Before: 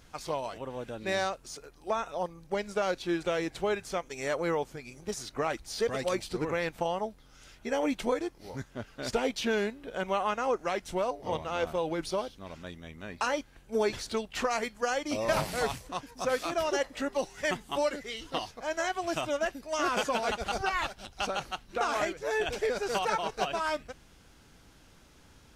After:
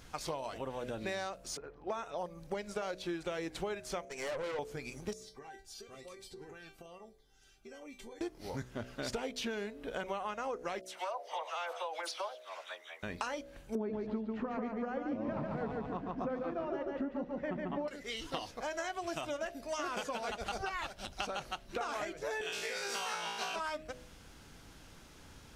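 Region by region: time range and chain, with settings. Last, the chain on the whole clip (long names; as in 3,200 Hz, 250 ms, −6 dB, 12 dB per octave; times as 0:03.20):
0:01.57–0:02.18: high-pass filter 50 Hz + low-pass that shuts in the quiet parts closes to 1,300 Hz, open at −27.5 dBFS
0:04.05–0:04.59: loudspeaker in its box 200–9,900 Hz, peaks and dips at 540 Hz +5 dB, 2,000 Hz +5 dB, 3,400 Hz −7 dB + tube saturation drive 34 dB, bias 0.7
0:05.13–0:08.21: tuned comb filter 390 Hz, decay 0.21 s, mix 90% + downward compressor 5 to 1, threshold −47 dBFS + phaser whose notches keep moving one way falling 1.1 Hz
0:10.81–0:13.03: high-pass filter 650 Hz 24 dB per octave + high-shelf EQ 5,900 Hz −4.5 dB + all-pass dispersion lows, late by 74 ms, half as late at 2,300 Hz
0:13.75–0:17.88: low-pass filter 1,500 Hz + parametric band 220 Hz +14 dB 1.2 octaves + repeating echo 143 ms, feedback 38%, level −4 dB
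0:22.41–0:23.56: high-pass filter 250 Hz + parametric band 450 Hz −13 dB 2.4 octaves + flutter between parallel walls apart 3 metres, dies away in 0.72 s
whole clip: hum removal 62.39 Hz, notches 11; downward compressor 6 to 1, threshold −38 dBFS; level +2.5 dB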